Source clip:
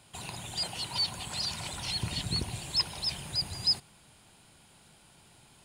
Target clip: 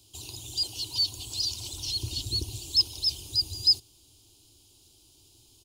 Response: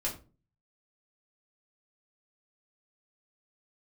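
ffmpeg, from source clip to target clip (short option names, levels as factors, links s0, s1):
-af "firequalizer=gain_entry='entry(110,0);entry(160,-23);entry(310,2);entry(560,-15);entry(1000,-16);entry(1800,-30);entry(2900,-4);entry(5900,6);entry(8900,-5);entry(13000,7)':delay=0.05:min_phase=1,volume=1.33"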